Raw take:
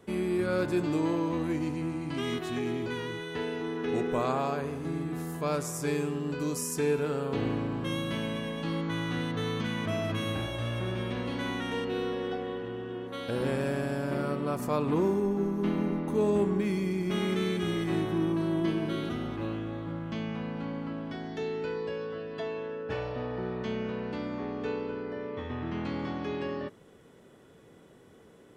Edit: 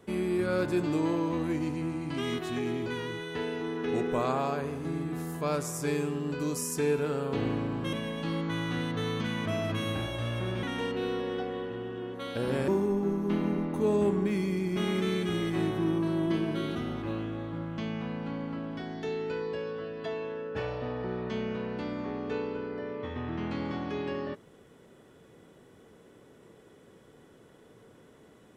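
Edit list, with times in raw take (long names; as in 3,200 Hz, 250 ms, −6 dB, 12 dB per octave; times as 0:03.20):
0:07.93–0:08.33: remove
0:11.03–0:11.56: remove
0:13.61–0:15.02: remove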